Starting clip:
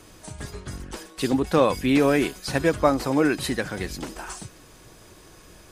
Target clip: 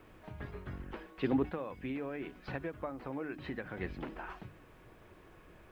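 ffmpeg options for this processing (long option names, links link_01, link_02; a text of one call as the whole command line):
ffmpeg -i in.wav -filter_complex "[0:a]lowpass=frequency=2700:width=0.5412,lowpass=frequency=2700:width=1.3066,bandreject=frequency=50:width_type=h:width=6,bandreject=frequency=100:width_type=h:width=6,bandreject=frequency=150:width_type=h:width=6,bandreject=frequency=200:width_type=h:width=6,bandreject=frequency=250:width_type=h:width=6,bandreject=frequency=300:width_type=h:width=6,asplit=3[link_01][link_02][link_03];[link_01]afade=type=out:start_time=1.49:duration=0.02[link_04];[link_02]acompressor=threshold=-29dB:ratio=10,afade=type=in:start_time=1.49:duration=0.02,afade=type=out:start_time=3.81:duration=0.02[link_05];[link_03]afade=type=in:start_time=3.81:duration=0.02[link_06];[link_04][link_05][link_06]amix=inputs=3:normalize=0,acrusher=bits=10:mix=0:aa=0.000001,volume=-7dB" out.wav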